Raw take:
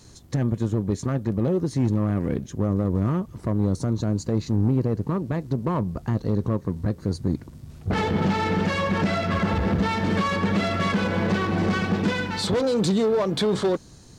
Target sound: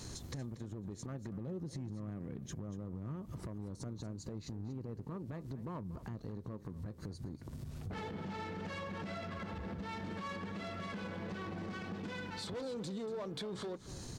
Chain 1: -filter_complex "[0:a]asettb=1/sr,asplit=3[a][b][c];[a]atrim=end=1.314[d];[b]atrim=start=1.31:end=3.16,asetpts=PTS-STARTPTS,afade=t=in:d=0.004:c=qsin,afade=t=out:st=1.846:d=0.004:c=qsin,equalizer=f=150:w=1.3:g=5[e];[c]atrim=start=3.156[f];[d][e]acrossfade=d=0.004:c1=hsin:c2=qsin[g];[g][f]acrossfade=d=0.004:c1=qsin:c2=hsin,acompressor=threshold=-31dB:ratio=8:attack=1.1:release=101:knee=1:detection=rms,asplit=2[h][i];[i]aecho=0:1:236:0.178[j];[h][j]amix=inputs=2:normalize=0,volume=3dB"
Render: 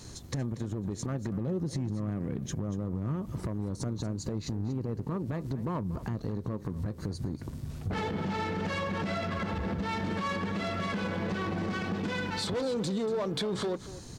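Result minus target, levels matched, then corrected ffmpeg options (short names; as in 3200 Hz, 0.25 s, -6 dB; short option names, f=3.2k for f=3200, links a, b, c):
compressor: peak gain reduction -10 dB
-filter_complex "[0:a]asettb=1/sr,asplit=3[a][b][c];[a]atrim=end=1.314[d];[b]atrim=start=1.31:end=3.16,asetpts=PTS-STARTPTS,afade=t=in:d=0.004:c=qsin,afade=t=out:st=1.846:d=0.004:c=qsin,equalizer=f=150:w=1.3:g=5[e];[c]atrim=start=3.156[f];[d][e]acrossfade=d=0.004:c1=hsin:c2=qsin[g];[g][f]acrossfade=d=0.004:c1=qsin:c2=hsin,acompressor=threshold=-42.5dB:ratio=8:attack=1.1:release=101:knee=1:detection=rms,asplit=2[h][i];[i]aecho=0:1:236:0.178[j];[h][j]amix=inputs=2:normalize=0,volume=3dB"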